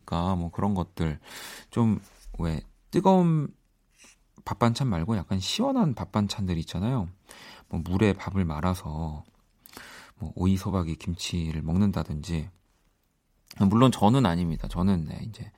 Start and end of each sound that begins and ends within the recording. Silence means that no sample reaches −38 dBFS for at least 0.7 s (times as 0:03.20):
0:04.47–0:12.48